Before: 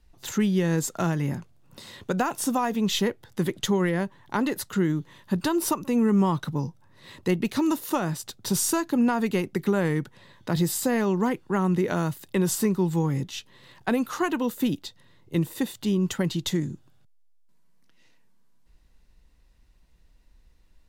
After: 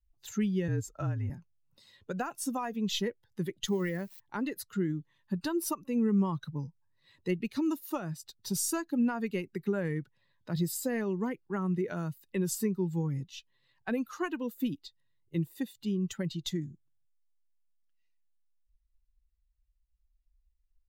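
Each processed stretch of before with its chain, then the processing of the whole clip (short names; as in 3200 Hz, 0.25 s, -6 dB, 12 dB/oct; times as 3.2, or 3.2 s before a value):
0.68–1.3 high shelf 3100 Hz -6.5 dB + frequency shift -39 Hz
3.68–4.2 switching spikes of -28.5 dBFS + notch 1600 Hz, Q 26
whole clip: per-bin expansion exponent 1.5; dynamic EQ 870 Hz, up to -5 dB, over -45 dBFS, Q 2.2; gain -4.5 dB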